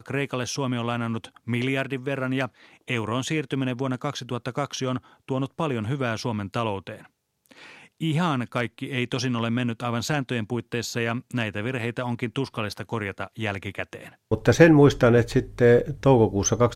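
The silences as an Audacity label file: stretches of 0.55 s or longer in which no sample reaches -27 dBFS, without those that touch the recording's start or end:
6.920000	8.020000	silence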